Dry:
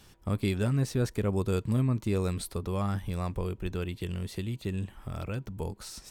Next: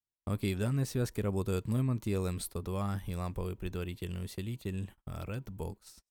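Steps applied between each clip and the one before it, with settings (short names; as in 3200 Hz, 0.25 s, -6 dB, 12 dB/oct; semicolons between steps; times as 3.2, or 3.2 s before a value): gate -41 dBFS, range -43 dB; high shelf 12000 Hz +11 dB; gain -4 dB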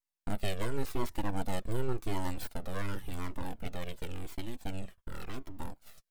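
full-wave rectifier; cascading flanger falling 0.91 Hz; gain +5.5 dB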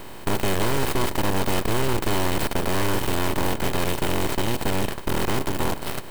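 per-bin compression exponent 0.2; in parallel at -5.5 dB: bit-crush 4-bit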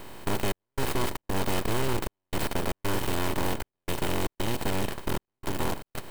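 step gate "xxxx..xxx.xx" 116 bpm -60 dB; gain -4.5 dB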